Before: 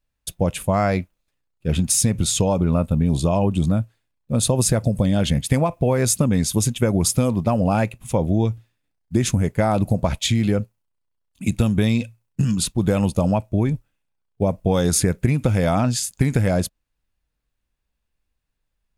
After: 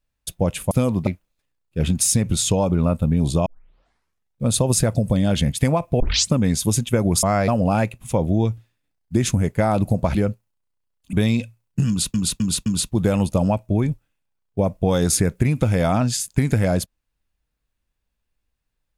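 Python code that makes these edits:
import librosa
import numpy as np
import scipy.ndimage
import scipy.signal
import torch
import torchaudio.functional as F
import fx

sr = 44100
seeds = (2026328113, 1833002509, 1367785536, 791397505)

y = fx.edit(x, sr, fx.swap(start_s=0.71, length_s=0.25, other_s=7.12, other_length_s=0.36),
    fx.tape_start(start_s=3.35, length_s=1.0),
    fx.tape_start(start_s=5.89, length_s=0.31),
    fx.cut(start_s=10.15, length_s=0.31),
    fx.cut(start_s=11.44, length_s=0.3),
    fx.repeat(start_s=12.49, length_s=0.26, count=4), tone=tone)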